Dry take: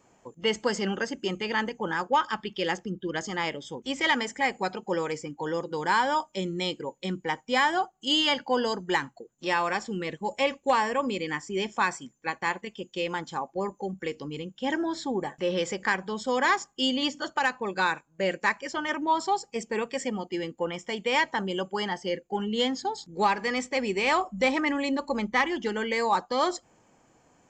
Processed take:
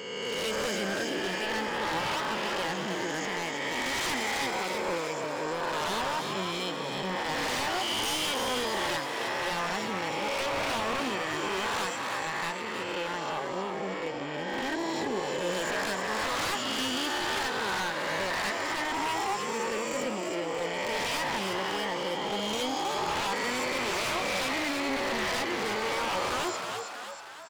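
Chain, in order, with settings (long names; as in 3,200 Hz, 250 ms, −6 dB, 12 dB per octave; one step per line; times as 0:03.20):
peak hold with a rise ahead of every peak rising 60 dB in 2.03 s
wave folding −20 dBFS
echo with shifted repeats 317 ms, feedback 55%, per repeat +100 Hz, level −5 dB
level −6.5 dB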